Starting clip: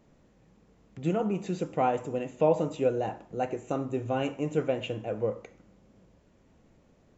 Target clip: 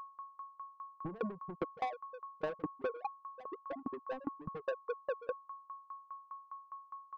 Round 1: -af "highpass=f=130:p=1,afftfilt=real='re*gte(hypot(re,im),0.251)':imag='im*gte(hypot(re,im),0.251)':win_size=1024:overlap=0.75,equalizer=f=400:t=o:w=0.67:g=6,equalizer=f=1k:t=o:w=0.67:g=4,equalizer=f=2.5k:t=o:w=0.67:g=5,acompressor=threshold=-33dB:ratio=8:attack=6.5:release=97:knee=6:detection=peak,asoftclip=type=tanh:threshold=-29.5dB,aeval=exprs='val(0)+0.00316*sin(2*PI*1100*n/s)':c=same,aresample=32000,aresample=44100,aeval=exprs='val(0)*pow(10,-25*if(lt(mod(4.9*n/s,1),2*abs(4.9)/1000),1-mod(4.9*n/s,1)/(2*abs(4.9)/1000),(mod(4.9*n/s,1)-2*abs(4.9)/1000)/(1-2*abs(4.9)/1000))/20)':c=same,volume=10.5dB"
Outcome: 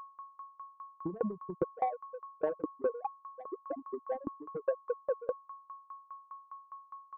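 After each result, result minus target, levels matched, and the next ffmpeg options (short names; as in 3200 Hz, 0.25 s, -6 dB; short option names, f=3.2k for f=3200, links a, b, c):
soft clip: distortion -11 dB; 125 Hz band -4.5 dB
-af "highpass=f=130:p=1,afftfilt=real='re*gte(hypot(re,im),0.251)':imag='im*gte(hypot(re,im),0.251)':win_size=1024:overlap=0.75,equalizer=f=400:t=o:w=0.67:g=6,equalizer=f=1k:t=o:w=0.67:g=4,equalizer=f=2.5k:t=o:w=0.67:g=5,acompressor=threshold=-33dB:ratio=8:attack=6.5:release=97:knee=6:detection=peak,asoftclip=type=tanh:threshold=-39.5dB,aeval=exprs='val(0)+0.00316*sin(2*PI*1100*n/s)':c=same,aresample=32000,aresample=44100,aeval=exprs='val(0)*pow(10,-25*if(lt(mod(4.9*n/s,1),2*abs(4.9)/1000),1-mod(4.9*n/s,1)/(2*abs(4.9)/1000),(mod(4.9*n/s,1)-2*abs(4.9)/1000)/(1-2*abs(4.9)/1000))/20)':c=same,volume=10.5dB"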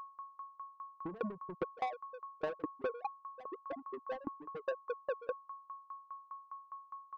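125 Hz band -4.0 dB
-af "afftfilt=real='re*gte(hypot(re,im),0.251)':imag='im*gte(hypot(re,im),0.251)':win_size=1024:overlap=0.75,equalizer=f=400:t=o:w=0.67:g=6,equalizer=f=1k:t=o:w=0.67:g=4,equalizer=f=2.5k:t=o:w=0.67:g=5,acompressor=threshold=-33dB:ratio=8:attack=6.5:release=97:knee=6:detection=peak,asoftclip=type=tanh:threshold=-39.5dB,aeval=exprs='val(0)+0.00316*sin(2*PI*1100*n/s)':c=same,aresample=32000,aresample=44100,aeval=exprs='val(0)*pow(10,-25*if(lt(mod(4.9*n/s,1),2*abs(4.9)/1000),1-mod(4.9*n/s,1)/(2*abs(4.9)/1000),(mod(4.9*n/s,1)-2*abs(4.9)/1000)/(1-2*abs(4.9)/1000))/20)':c=same,volume=10.5dB"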